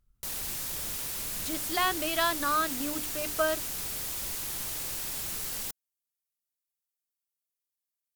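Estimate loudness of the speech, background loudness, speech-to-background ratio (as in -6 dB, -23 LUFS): -30.5 LUFS, -32.5 LUFS, 2.0 dB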